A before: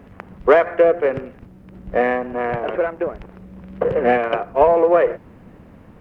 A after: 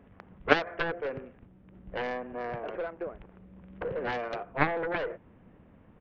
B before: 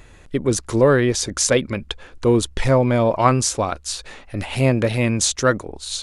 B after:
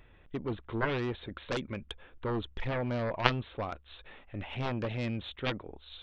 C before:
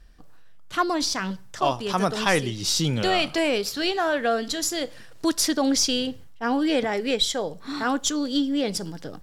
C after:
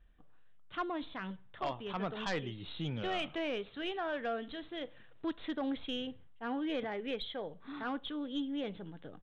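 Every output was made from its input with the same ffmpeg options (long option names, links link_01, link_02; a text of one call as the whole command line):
ffmpeg -i in.wav -af "aresample=8000,aresample=44100,aeval=exprs='0.944*(cos(1*acos(clip(val(0)/0.944,-1,1)))-cos(1*PI/2))+0.0531*(cos(2*acos(clip(val(0)/0.944,-1,1)))-cos(2*PI/2))+0.422*(cos(3*acos(clip(val(0)/0.944,-1,1)))-cos(3*PI/2))':channel_layout=same,volume=-3dB" out.wav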